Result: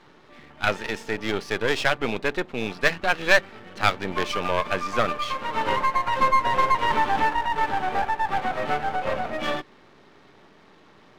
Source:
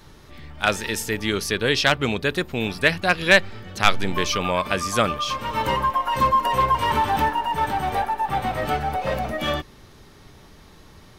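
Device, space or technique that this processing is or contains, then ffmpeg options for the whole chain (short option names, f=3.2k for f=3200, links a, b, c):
crystal radio: -af "highpass=230,lowpass=2.9k,aeval=exprs='if(lt(val(0),0),0.251*val(0),val(0))':c=same,volume=2.5dB"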